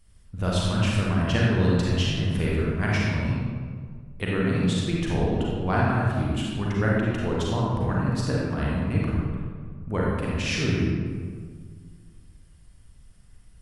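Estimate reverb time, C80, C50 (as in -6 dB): 1.8 s, 0.0 dB, -2.5 dB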